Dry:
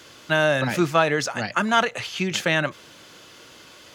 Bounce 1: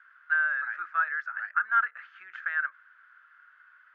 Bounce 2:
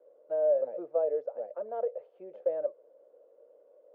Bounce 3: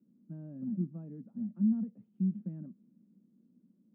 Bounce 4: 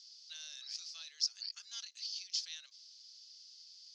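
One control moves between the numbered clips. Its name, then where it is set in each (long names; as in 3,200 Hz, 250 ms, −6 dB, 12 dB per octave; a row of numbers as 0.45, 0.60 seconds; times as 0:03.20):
flat-topped band-pass, frequency: 1,500, 530, 210, 5,000 Hertz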